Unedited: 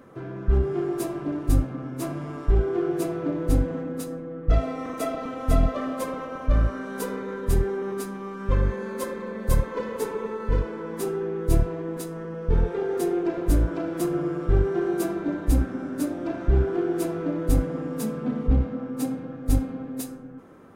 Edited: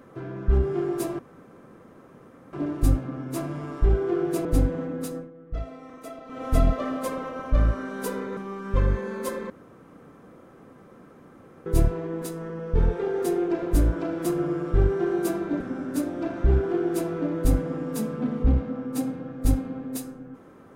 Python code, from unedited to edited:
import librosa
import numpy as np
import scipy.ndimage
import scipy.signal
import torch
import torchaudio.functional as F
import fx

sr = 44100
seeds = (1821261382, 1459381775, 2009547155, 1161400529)

y = fx.edit(x, sr, fx.insert_room_tone(at_s=1.19, length_s=1.34),
    fx.cut(start_s=3.11, length_s=0.3),
    fx.fade_down_up(start_s=4.12, length_s=1.27, db=-11.5, fade_s=0.15),
    fx.cut(start_s=7.33, length_s=0.79),
    fx.room_tone_fill(start_s=9.25, length_s=2.16),
    fx.cut(start_s=15.35, length_s=0.29), tone=tone)